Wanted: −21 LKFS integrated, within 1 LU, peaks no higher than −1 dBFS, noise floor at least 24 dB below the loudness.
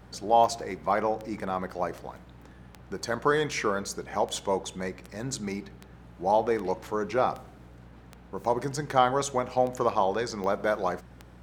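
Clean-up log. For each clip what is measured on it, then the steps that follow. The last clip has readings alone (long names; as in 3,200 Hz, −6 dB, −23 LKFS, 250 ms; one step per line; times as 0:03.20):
number of clicks 15; mains hum 60 Hz; hum harmonics up to 180 Hz; level of the hum −50 dBFS; integrated loudness −28.5 LKFS; sample peak −7.0 dBFS; target loudness −21.0 LKFS
→ click removal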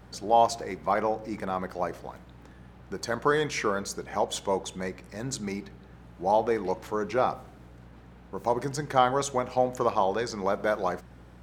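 number of clicks 0; mains hum 60 Hz; hum harmonics up to 180 Hz; level of the hum −50 dBFS
→ hum removal 60 Hz, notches 3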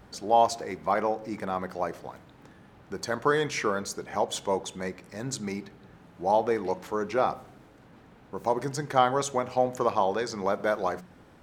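mains hum none found; integrated loudness −28.5 LKFS; sample peak −7.0 dBFS; target loudness −21.0 LKFS
→ level +7.5 dB
brickwall limiter −1 dBFS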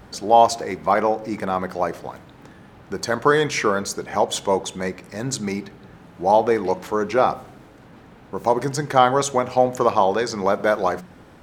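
integrated loudness −21.0 LKFS; sample peak −1.0 dBFS; background noise floor −47 dBFS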